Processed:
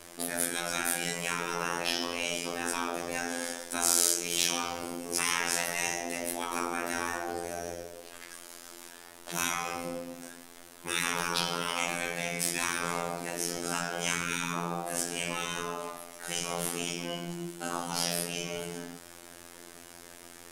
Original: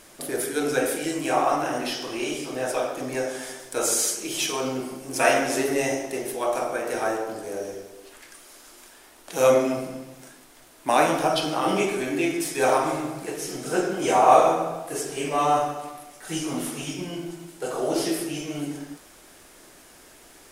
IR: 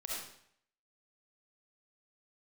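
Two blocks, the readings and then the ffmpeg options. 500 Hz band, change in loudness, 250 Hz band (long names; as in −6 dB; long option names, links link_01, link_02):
−13.5 dB, −6.5 dB, −10.0 dB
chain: -af "afftfilt=real='re*lt(hypot(re,im),0.141)':imag='im*lt(hypot(re,im),0.141)':win_size=1024:overlap=0.75,afftfilt=real='hypot(re,im)*cos(PI*b)':imag='0':win_size=2048:overlap=0.75,volume=4dB"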